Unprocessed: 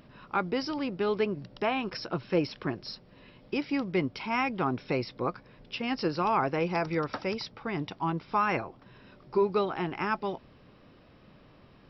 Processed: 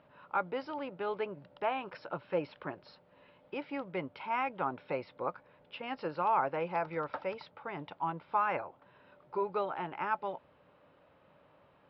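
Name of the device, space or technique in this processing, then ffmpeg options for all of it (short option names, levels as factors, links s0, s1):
guitar cabinet: -af "highpass=95,equalizer=f=120:t=q:w=4:g=-7,equalizer=f=220:t=q:w=4:g=-9,equalizer=f=350:t=q:w=4:g=-4,equalizer=f=570:t=q:w=4:g=8,equalizer=f=890:t=q:w=4:g=8,equalizer=f=1400:t=q:w=4:g=5,lowpass=f=3500:w=0.5412,lowpass=f=3500:w=1.3066,volume=0.398"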